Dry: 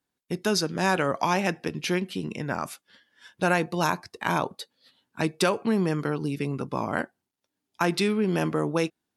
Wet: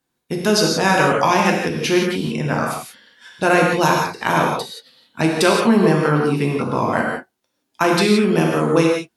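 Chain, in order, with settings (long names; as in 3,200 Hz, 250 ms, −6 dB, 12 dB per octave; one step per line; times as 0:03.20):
0:05.55–0:06.74: parametric band 1,000 Hz +5 dB 1.8 octaves
reverb whose tail is shaped and stops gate 200 ms flat, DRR −1 dB
level +6 dB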